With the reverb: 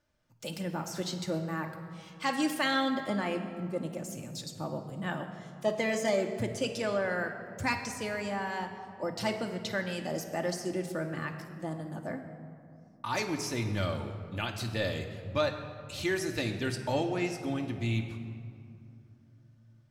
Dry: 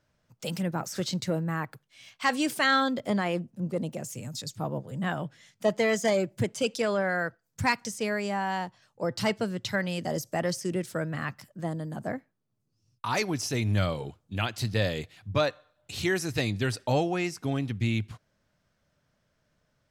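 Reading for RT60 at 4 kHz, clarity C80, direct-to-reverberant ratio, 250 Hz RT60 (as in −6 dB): 1.4 s, 9.0 dB, 3.5 dB, 3.6 s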